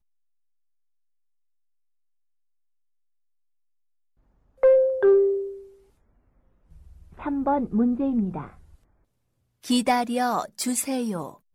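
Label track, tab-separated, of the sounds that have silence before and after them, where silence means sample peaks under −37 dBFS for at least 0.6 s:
4.630000	5.590000	sound
7.190000	8.500000	sound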